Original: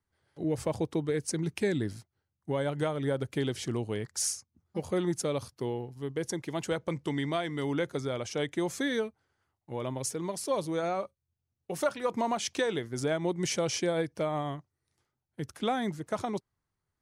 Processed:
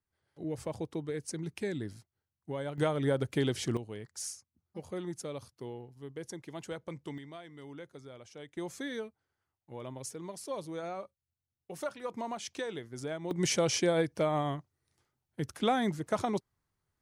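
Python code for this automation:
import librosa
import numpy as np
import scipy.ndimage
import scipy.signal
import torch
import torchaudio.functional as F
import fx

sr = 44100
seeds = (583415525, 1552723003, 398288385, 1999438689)

y = fx.gain(x, sr, db=fx.steps((0.0, -6.5), (2.78, 1.0), (3.77, -9.0), (7.18, -16.0), (8.57, -8.0), (13.31, 1.5)))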